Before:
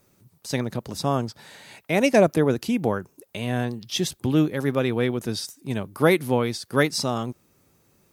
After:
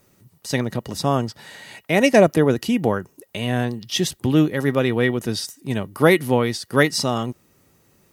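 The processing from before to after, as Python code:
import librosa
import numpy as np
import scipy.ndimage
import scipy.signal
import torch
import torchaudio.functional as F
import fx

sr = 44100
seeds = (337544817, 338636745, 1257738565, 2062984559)

y = fx.small_body(x, sr, hz=(1900.0, 2900.0), ring_ms=100, db=13)
y = F.gain(torch.from_numpy(y), 3.5).numpy()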